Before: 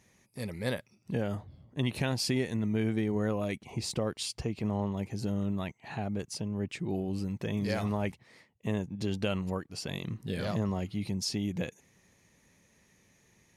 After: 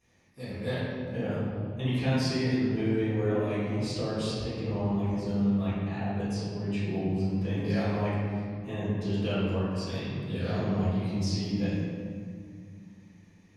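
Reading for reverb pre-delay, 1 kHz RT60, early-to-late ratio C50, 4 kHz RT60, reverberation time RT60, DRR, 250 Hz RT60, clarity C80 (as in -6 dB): 4 ms, 2.1 s, -3.0 dB, 1.2 s, 2.2 s, -13.5 dB, 3.4 s, -0.5 dB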